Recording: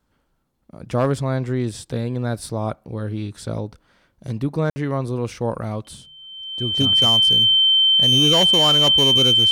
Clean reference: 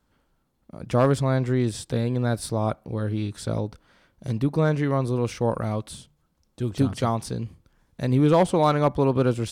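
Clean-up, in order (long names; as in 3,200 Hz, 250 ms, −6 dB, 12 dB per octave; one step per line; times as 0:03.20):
clipped peaks rebuilt −11 dBFS
notch filter 3,100 Hz, Q 30
ambience match 0:04.70–0:04.76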